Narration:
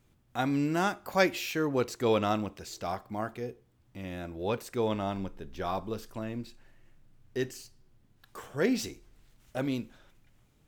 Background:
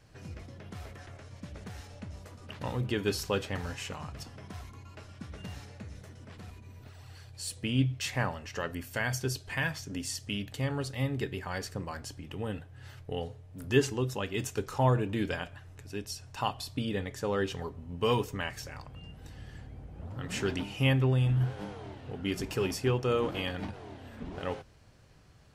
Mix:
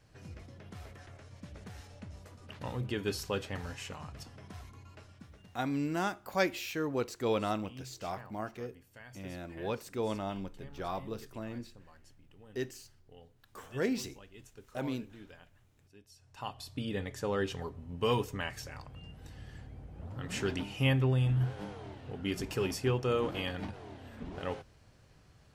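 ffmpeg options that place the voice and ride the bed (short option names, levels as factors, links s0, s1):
-filter_complex "[0:a]adelay=5200,volume=0.596[s0];[1:a]volume=5.31,afade=t=out:st=4.89:d=0.67:silence=0.149624,afade=t=in:st=16.11:d=0.94:silence=0.11885[s1];[s0][s1]amix=inputs=2:normalize=0"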